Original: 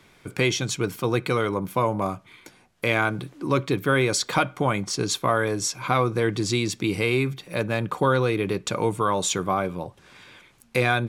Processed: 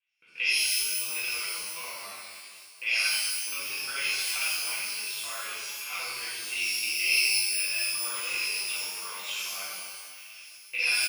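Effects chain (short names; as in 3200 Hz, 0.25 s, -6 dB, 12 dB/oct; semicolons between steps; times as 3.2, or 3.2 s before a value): local time reversal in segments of 44 ms; gate with hold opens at -41 dBFS; band-pass 2700 Hz, Q 13; feedback echo 0.235 s, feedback 60%, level -14.5 dB; shimmer reverb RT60 1.1 s, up +12 st, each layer -2 dB, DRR -8.5 dB; gain +2.5 dB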